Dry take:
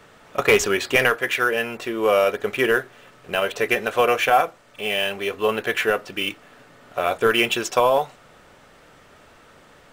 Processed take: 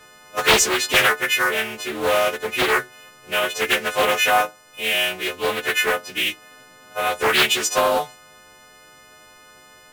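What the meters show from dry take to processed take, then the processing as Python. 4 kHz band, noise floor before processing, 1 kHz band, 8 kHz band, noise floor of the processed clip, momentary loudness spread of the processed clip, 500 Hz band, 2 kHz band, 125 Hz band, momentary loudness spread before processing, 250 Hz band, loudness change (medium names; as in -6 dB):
+6.0 dB, -51 dBFS, +0.5 dB, +9.0 dB, -49 dBFS, 10 LU, -2.5 dB, +2.5 dB, -2.0 dB, 9 LU, -2.5 dB, +1.5 dB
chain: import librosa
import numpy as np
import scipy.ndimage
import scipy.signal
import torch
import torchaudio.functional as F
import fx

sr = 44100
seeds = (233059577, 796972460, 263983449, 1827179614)

y = fx.freq_snap(x, sr, grid_st=3)
y = fx.doppler_dist(y, sr, depth_ms=0.66)
y = F.gain(torch.from_numpy(y), -2.0).numpy()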